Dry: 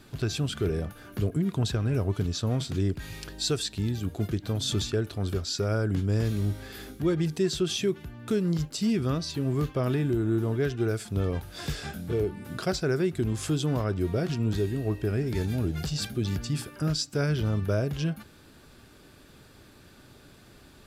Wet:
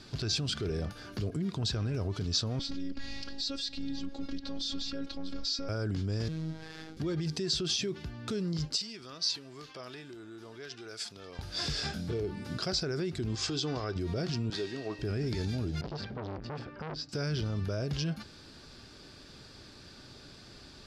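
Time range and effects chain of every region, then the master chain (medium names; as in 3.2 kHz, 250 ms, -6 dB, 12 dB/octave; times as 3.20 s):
2.59–5.69 s: low-pass 5.3 kHz + bass shelf 110 Hz +11 dB + robot voice 275 Hz
6.28–6.97 s: median filter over 9 samples + robot voice 159 Hz
8.77–11.39 s: compression 4:1, threshold -33 dBFS + high-pass 1.1 kHz 6 dB/octave
13.35–13.96 s: low-pass 6.9 kHz 24 dB/octave + bass shelf 330 Hz -7.5 dB + comb 2.6 ms, depth 33%
14.50–14.99 s: frequency weighting A + decimation joined by straight lines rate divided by 3×
15.81–17.09 s: low-pass 1.8 kHz + transformer saturation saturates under 1.1 kHz
whole clip: peak limiter -26.5 dBFS; low-pass 7.3 kHz 12 dB/octave; peaking EQ 4.9 kHz +11.5 dB 0.71 oct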